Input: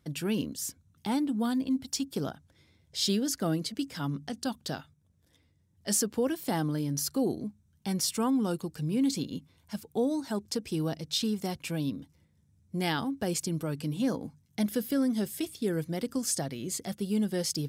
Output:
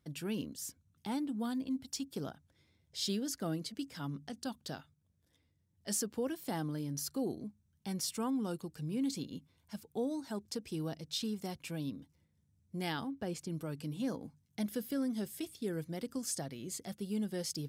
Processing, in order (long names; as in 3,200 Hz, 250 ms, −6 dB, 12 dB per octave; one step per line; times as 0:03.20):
0:13.05–0:13.49: high-shelf EQ 6,100 Hz → 4,000 Hz −10.5 dB
level −7.5 dB